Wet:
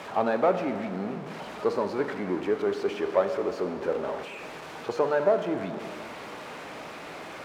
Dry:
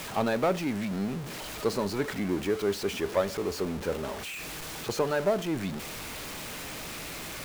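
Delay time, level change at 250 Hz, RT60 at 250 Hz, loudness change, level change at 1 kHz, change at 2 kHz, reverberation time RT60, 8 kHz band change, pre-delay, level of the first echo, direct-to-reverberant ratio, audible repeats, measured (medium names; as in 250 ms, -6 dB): no echo, -1.0 dB, 2.3 s, +2.5 dB, +4.0 dB, -0.5 dB, 2.3 s, under -10 dB, 7 ms, no echo, 7.5 dB, no echo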